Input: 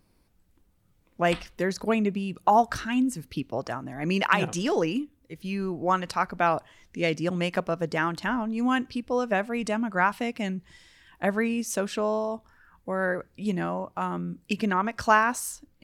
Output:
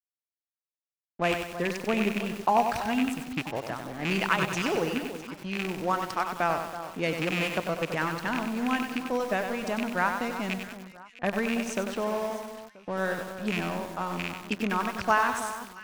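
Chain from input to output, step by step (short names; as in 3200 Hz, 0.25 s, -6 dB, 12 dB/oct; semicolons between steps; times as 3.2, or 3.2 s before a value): rattling part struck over -30 dBFS, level -16 dBFS; in parallel at 0 dB: compressor 6:1, threshold -33 dBFS, peak gain reduction 17.5 dB; on the sum: crossover distortion -36.5 dBFS; low-pass opened by the level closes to 2200 Hz, open at -21 dBFS; echo with dull and thin repeats by turns 0.327 s, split 1500 Hz, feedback 56%, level -11 dB; lo-fi delay 95 ms, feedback 55%, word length 6-bit, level -6 dB; gain -4.5 dB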